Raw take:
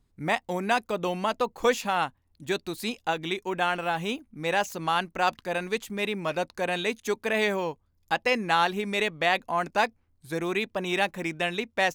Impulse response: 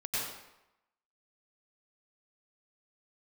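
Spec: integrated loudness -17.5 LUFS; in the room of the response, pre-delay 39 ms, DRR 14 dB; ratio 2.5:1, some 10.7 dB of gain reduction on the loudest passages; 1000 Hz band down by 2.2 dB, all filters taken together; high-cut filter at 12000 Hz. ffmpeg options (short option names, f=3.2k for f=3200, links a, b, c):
-filter_complex "[0:a]lowpass=12k,equalizer=f=1k:t=o:g=-3,acompressor=threshold=-35dB:ratio=2.5,asplit=2[a][b];[1:a]atrim=start_sample=2205,adelay=39[c];[b][c]afir=irnorm=-1:irlink=0,volume=-19.5dB[d];[a][d]amix=inputs=2:normalize=0,volume=18.5dB"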